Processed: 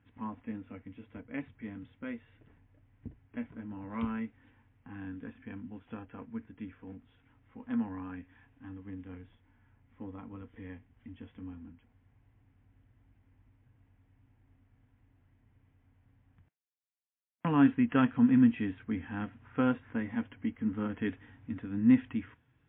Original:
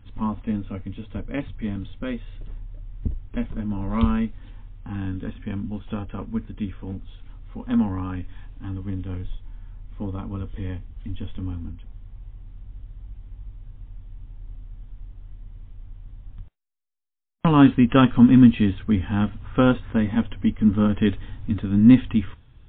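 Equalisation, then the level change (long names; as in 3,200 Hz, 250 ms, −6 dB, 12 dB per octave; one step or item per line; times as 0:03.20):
loudspeaker in its box 200–2,300 Hz, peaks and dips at 200 Hz −9 dB, 380 Hz −9 dB, 570 Hz −9 dB, 840 Hz −5 dB, 1,200 Hz −8 dB
−5.0 dB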